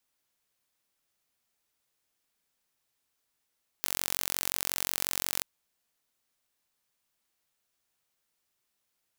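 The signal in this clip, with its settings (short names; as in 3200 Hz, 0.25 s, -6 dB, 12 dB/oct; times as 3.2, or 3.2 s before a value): pulse train 45.6/s, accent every 0, -3 dBFS 1.59 s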